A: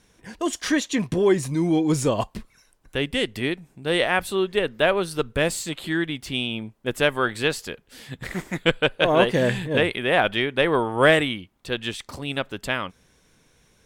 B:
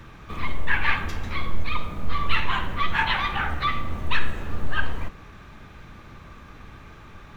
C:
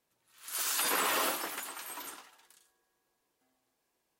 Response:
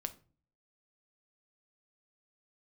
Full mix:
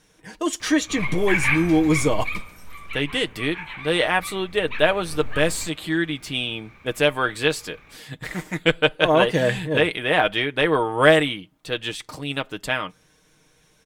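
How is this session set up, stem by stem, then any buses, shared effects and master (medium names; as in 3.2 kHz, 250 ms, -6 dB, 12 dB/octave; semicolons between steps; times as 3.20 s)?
-0.5 dB, 0.00 s, send -15.5 dB, comb 6.5 ms, depth 50%
2.20 s -3 dB -> 2.61 s -15.5 dB -> 4.41 s -15.5 dB -> 5.19 s -6 dB, 0.60 s, no send, peaking EQ 2.3 kHz +15 dB 0.23 oct
-9.5 dB, 0.70 s, no send, compression, threshold -40 dBFS, peak gain reduction 12.5 dB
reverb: on, pre-delay 6 ms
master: bass shelf 240 Hz -4 dB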